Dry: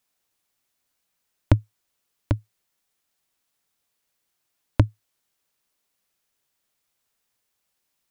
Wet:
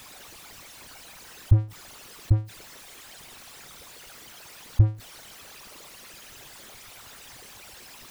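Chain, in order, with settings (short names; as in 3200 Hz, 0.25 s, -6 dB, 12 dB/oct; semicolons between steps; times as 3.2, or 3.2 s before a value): formant sharpening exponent 3; power-law curve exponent 0.5; slew limiter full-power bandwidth 51 Hz; gain -2 dB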